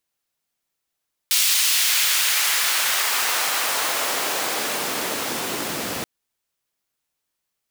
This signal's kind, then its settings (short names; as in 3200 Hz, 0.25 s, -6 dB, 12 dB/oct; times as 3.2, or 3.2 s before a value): swept filtered noise pink, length 4.73 s highpass, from 3600 Hz, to 170 Hz, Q 0.84, exponential, gain ramp -14 dB